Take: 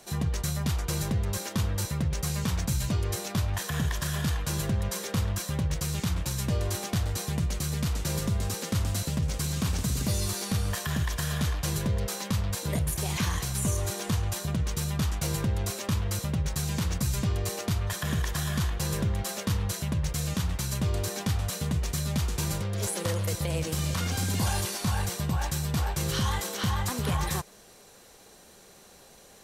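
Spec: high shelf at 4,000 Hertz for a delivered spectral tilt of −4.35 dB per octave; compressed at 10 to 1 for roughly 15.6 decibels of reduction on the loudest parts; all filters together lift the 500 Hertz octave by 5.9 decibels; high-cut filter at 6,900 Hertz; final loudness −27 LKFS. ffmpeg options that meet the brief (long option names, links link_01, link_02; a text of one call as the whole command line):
ffmpeg -i in.wav -af "lowpass=6900,equalizer=frequency=500:width_type=o:gain=7,highshelf=frequency=4000:gain=5.5,acompressor=threshold=-39dB:ratio=10,volume=16dB" out.wav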